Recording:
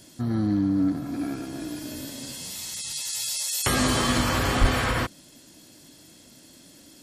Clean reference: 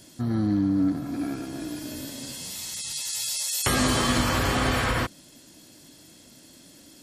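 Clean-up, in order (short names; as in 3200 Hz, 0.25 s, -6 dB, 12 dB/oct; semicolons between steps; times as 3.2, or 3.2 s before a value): clip repair -11 dBFS; de-plosive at 4.6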